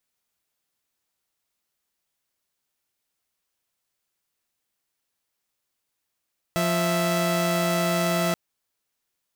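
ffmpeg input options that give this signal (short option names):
-f lavfi -i "aevalsrc='0.0841*((2*mod(174.61*t,1)-1)+(2*mod(659.26*t,1)-1))':d=1.78:s=44100"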